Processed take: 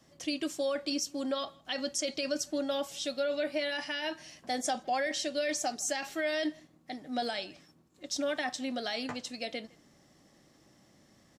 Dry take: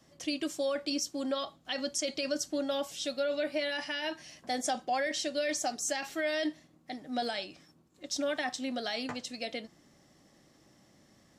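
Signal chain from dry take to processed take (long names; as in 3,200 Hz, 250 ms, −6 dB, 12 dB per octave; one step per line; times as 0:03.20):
far-end echo of a speakerphone 160 ms, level −24 dB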